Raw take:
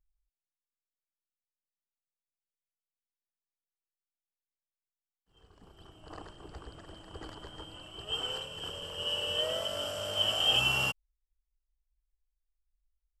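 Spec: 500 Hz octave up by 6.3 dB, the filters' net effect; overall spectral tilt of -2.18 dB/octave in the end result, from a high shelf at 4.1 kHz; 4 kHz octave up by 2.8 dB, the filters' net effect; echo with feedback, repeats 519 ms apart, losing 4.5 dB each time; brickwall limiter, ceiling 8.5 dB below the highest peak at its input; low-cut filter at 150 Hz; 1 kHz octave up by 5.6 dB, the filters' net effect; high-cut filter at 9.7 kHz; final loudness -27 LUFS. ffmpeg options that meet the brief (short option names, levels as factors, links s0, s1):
-af "highpass=150,lowpass=9700,equalizer=f=500:t=o:g=6,equalizer=f=1000:t=o:g=5.5,equalizer=f=4000:t=o:g=8.5,highshelf=f=4100:g=-8.5,alimiter=limit=0.0944:level=0:latency=1,aecho=1:1:519|1038|1557|2076|2595|3114|3633|4152|4671:0.596|0.357|0.214|0.129|0.0772|0.0463|0.0278|0.0167|0.01,volume=1.33"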